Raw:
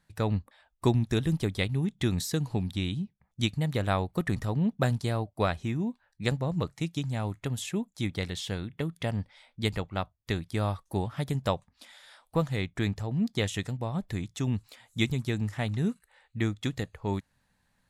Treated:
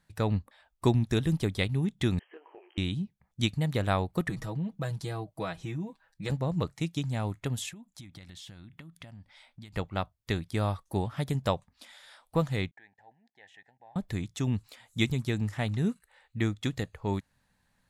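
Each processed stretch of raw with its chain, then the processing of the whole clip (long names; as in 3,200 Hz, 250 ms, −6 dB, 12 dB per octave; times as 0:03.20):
0:02.19–0:02.78: linear-phase brick-wall band-pass 320–3,200 Hz + downward compressor 12 to 1, threshold −40 dBFS + micro pitch shift up and down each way 51 cents
0:04.29–0:06.30: comb filter 6.2 ms, depth 86% + downward compressor 2 to 1, threshold −37 dBFS
0:07.69–0:09.76: downward compressor 16 to 1, threshold −42 dBFS + parametric band 440 Hz −12 dB 0.38 octaves
0:12.71–0:13.96: output level in coarse steps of 20 dB + pair of resonant band-passes 1,200 Hz, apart 1.1 octaves + parametric band 1,200 Hz −8 dB 0.22 octaves
whole clip: no processing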